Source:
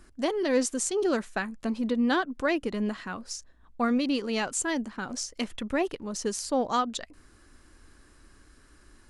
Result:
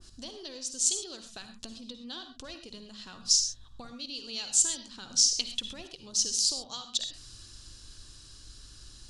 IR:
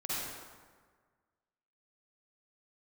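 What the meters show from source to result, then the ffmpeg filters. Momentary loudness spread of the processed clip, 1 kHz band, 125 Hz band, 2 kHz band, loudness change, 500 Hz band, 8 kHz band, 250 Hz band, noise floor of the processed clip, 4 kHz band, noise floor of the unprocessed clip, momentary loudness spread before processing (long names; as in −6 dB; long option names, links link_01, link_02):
21 LU, −19.0 dB, can't be measured, −15.5 dB, +1.5 dB, −19.5 dB, +8.0 dB, −19.0 dB, −52 dBFS, +8.0 dB, −58 dBFS, 9 LU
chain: -filter_complex "[0:a]lowpass=4100,aeval=exprs='val(0)+0.000708*(sin(2*PI*50*n/s)+sin(2*PI*2*50*n/s)/2+sin(2*PI*3*50*n/s)/3+sin(2*PI*4*50*n/s)/4+sin(2*PI*5*50*n/s)/5)':channel_layout=same,acompressor=threshold=-41dB:ratio=8,aexciter=amount=14.2:drive=5.8:freq=3200,asplit=2[link_01][link_02];[link_02]lowshelf=frequency=190:width_type=q:width=1.5:gain=13[link_03];[1:a]atrim=start_sample=2205,atrim=end_sample=6174[link_04];[link_03][link_04]afir=irnorm=-1:irlink=0,volume=-7.5dB[link_05];[link_01][link_05]amix=inputs=2:normalize=0,adynamicequalizer=threshold=0.0126:dfrequency=1700:dqfactor=0.7:tfrequency=1700:tqfactor=0.7:attack=5:release=100:ratio=0.375:range=2.5:mode=boostabove:tftype=highshelf,volume=-5.5dB"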